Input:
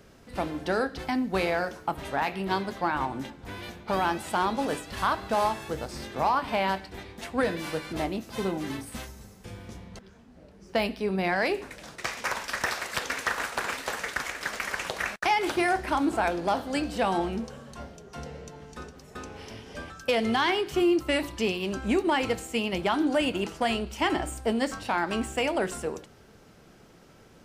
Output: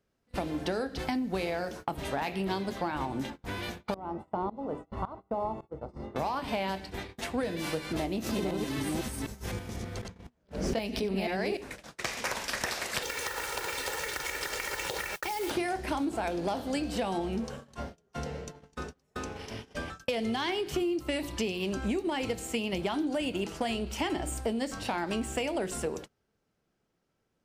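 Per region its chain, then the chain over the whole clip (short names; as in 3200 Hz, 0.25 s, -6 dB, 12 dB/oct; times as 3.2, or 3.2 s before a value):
3.94–6.16 polynomial smoothing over 65 samples + tremolo saw up 1.8 Hz, depth 90%
8.01–11.57 reverse delay 0.251 s, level -0.5 dB + backwards sustainer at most 92 dB/s
13.02–15.51 comb 2.2 ms, depth 78% + compressor 10:1, threshold -30 dBFS + modulation noise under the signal 13 dB
whole clip: gate -42 dBFS, range -27 dB; dynamic EQ 1300 Hz, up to -7 dB, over -40 dBFS, Q 0.96; compressor, threshold -31 dBFS; gain +3 dB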